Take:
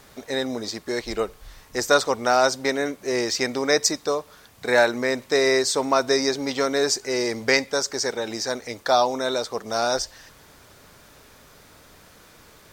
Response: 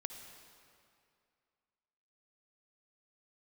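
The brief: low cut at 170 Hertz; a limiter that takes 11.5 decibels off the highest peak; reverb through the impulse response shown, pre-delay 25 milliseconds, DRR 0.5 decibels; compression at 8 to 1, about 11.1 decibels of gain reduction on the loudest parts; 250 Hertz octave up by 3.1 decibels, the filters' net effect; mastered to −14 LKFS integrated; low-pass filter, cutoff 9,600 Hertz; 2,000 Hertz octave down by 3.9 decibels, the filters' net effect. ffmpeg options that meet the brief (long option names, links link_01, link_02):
-filter_complex "[0:a]highpass=170,lowpass=9600,equalizer=frequency=250:width_type=o:gain=4.5,equalizer=frequency=2000:width_type=o:gain=-5,acompressor=threshold=-25dB:ratio=8,alimiter=limit=-23.5dB:level=0:latency=1,asplit=2[link_01][link_02];[1:a]atrim=start_sample=2205,adelay=25[link_03];[link_02][link_03]afir=irnorm=-1:irlink=0,volume=1.5dB[link_04];[link_01][link_04]amix=inputs=2:normalize=0,volume=17dB"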